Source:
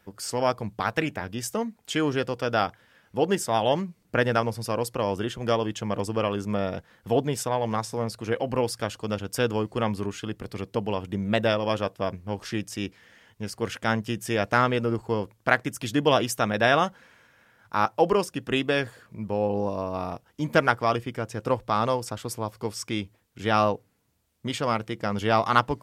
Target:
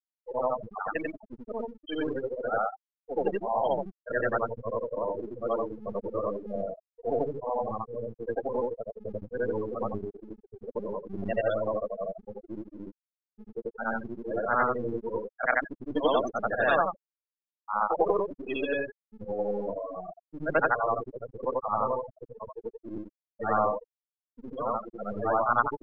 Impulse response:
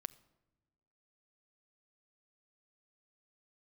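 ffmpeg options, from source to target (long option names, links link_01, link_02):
-filter_complex "[0:a]afftfilt=real='re':imag='-im':win_size=8192:overlap=0.75,lowshelf=frequency=160:gain=-5,afftfilt=real='re*gte(hypot(re,im),0.0708)':imag='im*gte(hypot(re,im),0.0708)':win_size=1024:overlap=0.75,acrossover=split=300|580|2600[link_01][link_02][link_03][link_04];[link_01]aeval=exprs='max(val(0),0)':channel_layout=same[link_05];[link_05][link_02][link_03][link_04]amix=inputs=4:normalize=0,volume=2.5dB"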